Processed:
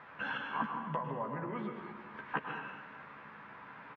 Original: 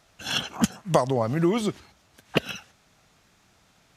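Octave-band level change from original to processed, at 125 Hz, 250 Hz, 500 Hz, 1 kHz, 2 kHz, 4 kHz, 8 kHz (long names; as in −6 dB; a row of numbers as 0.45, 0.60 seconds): −16.0 dB, −16.0 dB, −16.5 dB, −6.0 dB, −4.5 dB, −21.0 dB, below −40 dB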